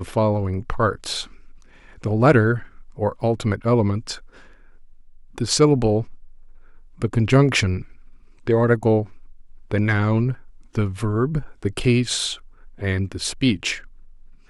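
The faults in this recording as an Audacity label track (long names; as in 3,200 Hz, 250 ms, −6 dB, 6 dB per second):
3.210000	3.210000	drop-out 3.7 ms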